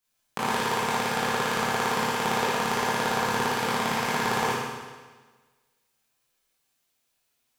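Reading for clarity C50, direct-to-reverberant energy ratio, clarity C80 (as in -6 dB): -3.0 dB, -10.0 dB, 0.5 dB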